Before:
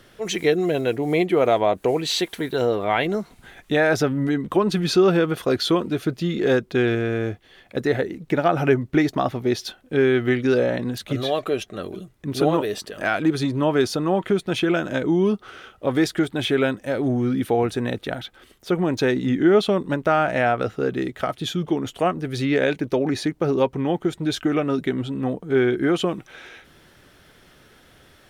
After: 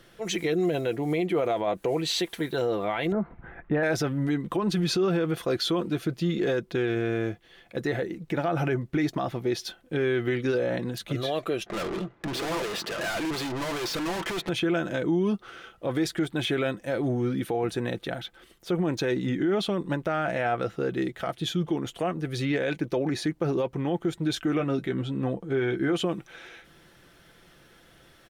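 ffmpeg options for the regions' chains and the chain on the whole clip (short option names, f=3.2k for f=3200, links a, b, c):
-filter_complex "[0:a]asettb=1/sr,asplit=3[a][b][c];[a]atrim=end=3.124[d];[b]atrim=start=3.12:end=3.83,asetpts=PTS-STARTPTS,afade=t=in:d=0.004:c=qsin,afade=t=out:st=0.706:d=0.004:c=qsin,lowpass=f=1.8k:w=0.5412,lowpass=f=1.8k:w=1.3066,acontrast=30,equalizer=f=66:t=o:w=1.2:g=7.5[e];[c]atrim=start=3.826[f];[d][e]acrossfade=d=0.004:c1=hsin:c2=qsin[g];[g][f]acrossfade=d=0.004:c1=qsin:c2=hsin,asettb=1/sr,asplit=3[h][i][j];[h]atrim=end=11.664[k];[i]atrim=start=11.66:end=14.49,asetpts=PTS-STARTPTS,afade=t=in:d=0.004:c=qsin,afade=t=out:st=2.826:d=0.004:c=qsin,asplit=2[l][m];[m]highpass=f=720:p=1,volume=26dB,asoftclip=type=tanh:threshold=-7.5dB[n];[l][n]amix=inputs=2:normalize=0,lowpass=f=3.9k:p=1,volume=-6dB,asoftclip=type=hard:threshold=-25.5dB,adynamicsmooth=sensitivity=6:basefreq=1.4k[o];[j]atrim=start=14.486[p];[k][o]acrossfade=d=0.004:c1=hsin:c2=qsin[q];[q][p]acrossfade=d=0.004:c1=qsin:c2=hsin,asettb=1/sr,asplit=3[r][s][t];[r]atrim=end=24.584[u];[s]atrim=start=24.58:end=25.93,asetpts=PTS-STARTPTS,afade=t=in:d=0.004:c=qsin,afade=t=out:st=1.346:d=0.004:c=qsin,highshelf=f=10k:g=-7,asplit=2[v][w];[w]adelay=15,volume=-8.5dB[x];[v][x]amix=inputs=2:normalize=0,atrim=end_sample=59535[y];[t]atrim=start=25.926[z];[u][y]acrossfade=d=0.004:c1=hsin:c2=qsin[aa];[aa][z]acrossfade=d=0.004:c1=qsin:c2=hsin,aecho=1:1:5.9:0.37,alimiter=limit=-14dB:level=0:latency=1:release=26,volume=-4dB"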